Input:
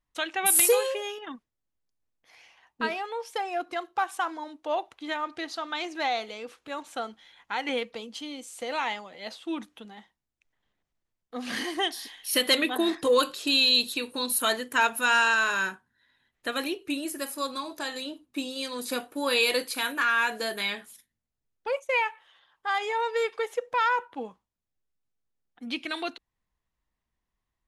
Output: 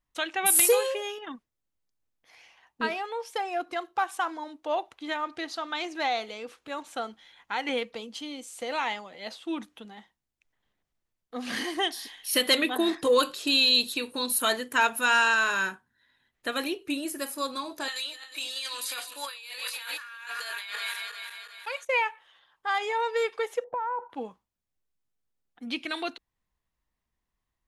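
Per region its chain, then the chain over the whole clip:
0:17.88–0:21.85: feedback delay that plays each chunk backwards 180 ms, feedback 68%, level −10 dB + high-pass filter 1,300 Hz + compressor whose output falls as the input rises −37 dBFS
0:23.64–0:24.10: low-pass with resonance 790 Hz, resonance Q 2.9 + downward compressor 5 to 1, threshold −28 dBFS
whole clip: no processing

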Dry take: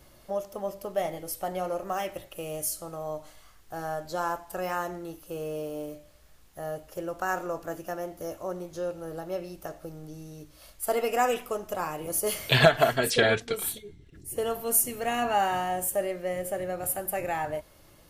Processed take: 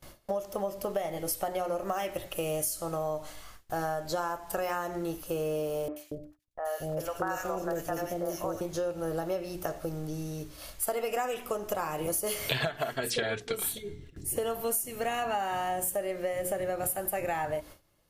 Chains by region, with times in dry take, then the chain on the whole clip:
0:05.88–0:08.61: noise gate −53 dBFS, range −28 dB + three-band delay without the direct sound mids, highs, lows 80/230 ms, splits 560/1,800 Hz
whole clip: mains-hum notches 60/120/180/240/300/360/420 Hz; noise gate with hold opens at −44 dBFS; downward compressor 10 to 1, threshold −35 dBFS; level +7 dB

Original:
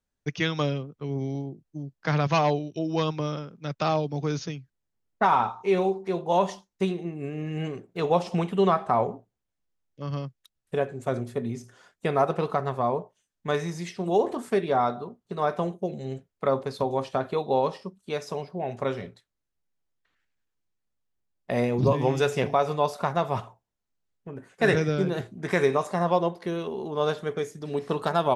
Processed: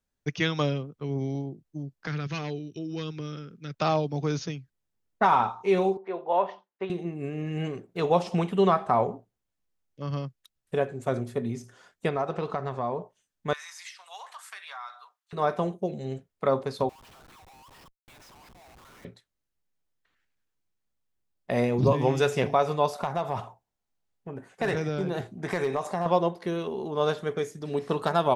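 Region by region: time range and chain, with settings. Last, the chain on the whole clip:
0:02.07–0:03.74: flat-topped bell 770 Hz −11.5 dB 1.2 octaves + downward compressor 1.5 to 1, threshold −40 dBFS
0:05.97–0:06.90: band-pass filter 460–2,400 Hz + high-frequency loss of the air 140 metres
0:12.09–0:13.01: low-pass filter 7,500 Hz 24 dB per octave + downward compressor 2 to 1, threshold −28 dBFS
0:13.53–0:15.33: inverse Chebyshev high-pass filter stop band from 330 Hz, stop band 60 dB + downward compressor 3 to 1, threshold −38 dBFS
0:16.89–0:19.05: Butterworth high-pass 910 Hz + downward compressor, threshold −48 dBFS + comparator with hysteresis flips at −55.5 dBFS
0:22.93–0:26.06: hard clipping −14.5 dBFS + parametric band 780 Hz +5.5 dB 0.55 octaves + downward compressor 2.5 to 1, threshold −26 dBFS
whole clip: no processing

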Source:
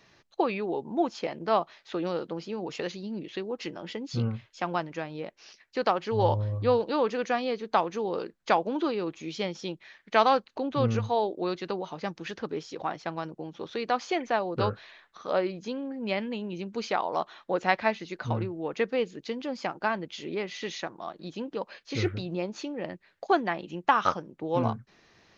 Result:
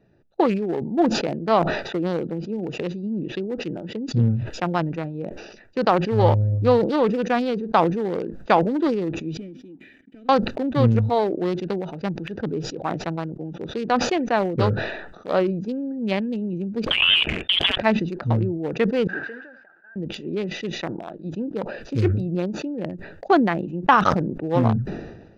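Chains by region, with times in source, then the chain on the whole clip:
0:09.37–0:10.29: formant filter i + downward compressor 10 to 1, threshold −48 dBFS + leveller curve on the samples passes 2
0:16.86–0:17.78: compressor whose output falls as the input rises −32 dBFS, ratio −0.5 + leveller curve on the samples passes 3 + voice inversion scrambler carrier 3,600 Hz
0:19.07–0:19.96: linear delta modulator 32 kbit/s, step −36 dBFS + resonant band-pass 1,600 Hz, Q 18 + flutter between parallel walls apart 12 metres, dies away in 0.29 s
whole clip: adaptive Wiener filter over 41 samples; dynamic equaliser 150 Hz, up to +5 dB, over −44 dBFS, Q 0.71; level that may fall only so fast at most 53 dB per second; level +5.5 dB

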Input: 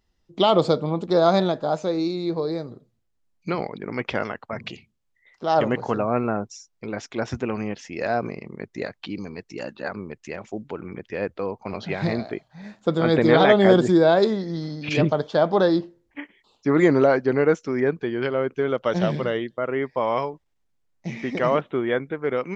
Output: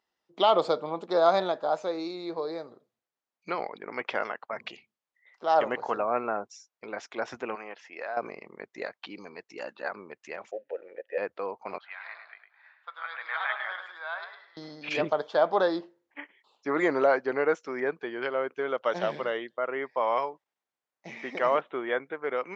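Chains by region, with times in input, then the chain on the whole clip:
0:07.55–0:08.17: resonant band-pass 1,300 Hz, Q 0.53 + downward compressor 5 to 1, threshold −27 dBFS
0:10.51–0:11.18: variable-slope delta modulation 64 kbit/s + formant filter e + parametric band 690 Hz +14 dB 2.7 octaves
0:11.78–0:14.57: high-pass filter 1,200 Hz 24 dB per octave + high-frequency loss of the air 450 metres + repeating echo 105 ms, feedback 28%, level −8 dB
whole clip: high-pass filter 790 Hz 12 dB per octave; spectral tilt −3 dB per octave

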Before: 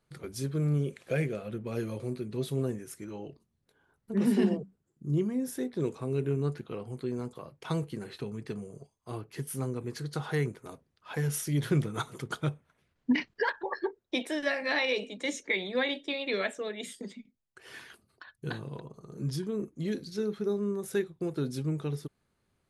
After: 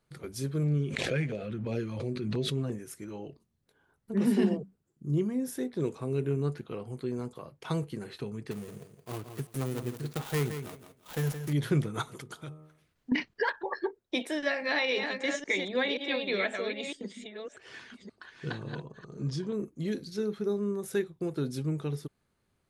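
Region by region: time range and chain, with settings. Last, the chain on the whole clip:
0:00.63–0:02.72: low-pass filter 5,600 Hz + auto-filter notch saw down 2.9 Hz 330–1,600 Hz + background raised ahead of every attack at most 28 dB per second
0:08.51–0:11.53: gap after every zero crossing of 0.25 ms + high-shelf EQ 9,400 Hz +11 dB + repeating echo 169 ms, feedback 21%, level −9 dB
0:12.21–0:13.12: high-shelf EQ 3,600 Hz +6.5 dB + hum removal 77.14 Hz, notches 17 + downward compressor 2 to 1, threshold −47 dBFS
0:14.38–0:19.53: delay that plays each chunk backwards 531 ms, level −5.5 dB + low-pass filter 7,500 Hz 24 dB per octave
whole clip: no processing

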